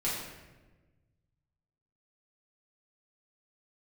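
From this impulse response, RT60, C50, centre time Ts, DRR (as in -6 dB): 1.2 s, 1.0 dB, 69 ms, -8.5 dB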